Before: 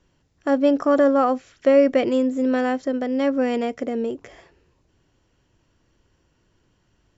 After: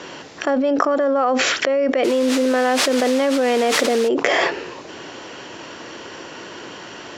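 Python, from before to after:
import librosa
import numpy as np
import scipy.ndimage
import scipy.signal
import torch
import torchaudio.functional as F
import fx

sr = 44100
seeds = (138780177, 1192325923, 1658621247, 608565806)

y = fx.quant_dither(x, sr, seeds[0], bits=6, dither='triangular', at=(2.03, 4.07), fade=0.02)
y = fx.bandpass_edges(y, sr, low_hz=380.0, high_hz=5500.0)
y = fx.env_flatten(y, sr, amount_pct=100)
y = y * 10.0 ** (-4.5 / 20.0)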